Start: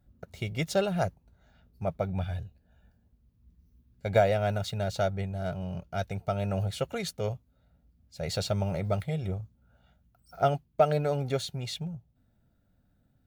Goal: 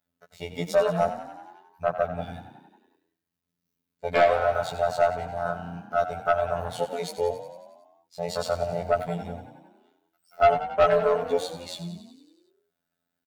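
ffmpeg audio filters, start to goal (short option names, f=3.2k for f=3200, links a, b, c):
-filter_complex "[0:a]aeval=exprs='if(lt(val(0),0),0.447*val(0),val(0))':c=same,afwtdn=0.02,lowpass=f=1.6k:p=1,aderivative,aecho=1:1:7:0.91,afftfilt=real='hypot(re,im)*cos(PI*b)':imag='0':win_size=2048:overlap=0.75,apsyclip=35.5dB,asoftclip=type=tanh:threshold=-8dB,asplit=2[a][b];[b]asplit=8[c][d][e][f][g][h][i][j];[c]adelay=91,afreqshift=30,volume=-12dB[k];[d]adelay=182,afreqshift=60,volume=-15.9dB[l];[e]adelay=273,afreqshift=90,volume=-19.8dB[m];[f]adelay=364,afreqshift=120,volume=-23.6dB[n];[g]adelay=455,afreqshift=150,volume=-27.5dB[o];[h]adelay=546,afreqshift=180,volume=-31.4dB[p];[i]adelay=637,afreqshift=210,volume=-35.3dB[q];[j]adelay=728,afreqshift=240,volume=-39.1dB[r];[k][l][m][n][o][p][q][r]amix=inputs=8:normalize=0[s];[a][s]amix=inputs=2:normalize=0,volume=-3dB"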